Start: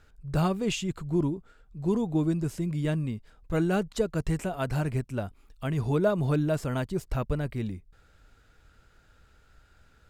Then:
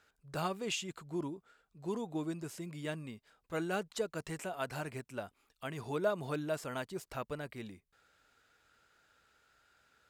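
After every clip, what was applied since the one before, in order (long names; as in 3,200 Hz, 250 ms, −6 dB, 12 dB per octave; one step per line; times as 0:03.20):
high-pass filter 650 Hz 6 dB per octave
level −3.5 dB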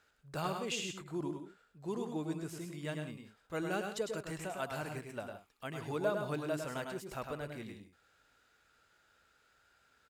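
multi-tap delay 103/123/170 ms −5.5/−12.5/−14 dB
level −1.5 dB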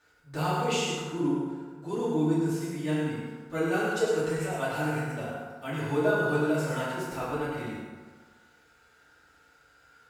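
feedback delay network reverb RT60 1.6 s, low-frequency decay 0.85×, high-frequency decay 0.5×, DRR −10 dB
level −1.5 dB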